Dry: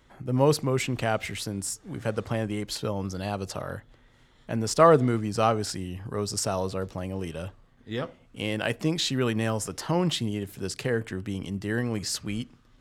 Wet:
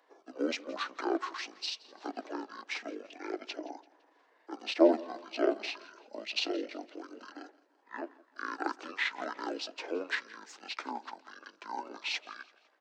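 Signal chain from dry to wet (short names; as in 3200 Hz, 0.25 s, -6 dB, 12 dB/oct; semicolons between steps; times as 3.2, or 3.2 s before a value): delay-line pitch shifter -11.5 st; steep high-pass 310 Hz 48 dB/oct; bell 3600 Hz -2.5 dB 0.34 oct; feedback echo 0.169 s, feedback 45%, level -21.5 dB; gain -2 dB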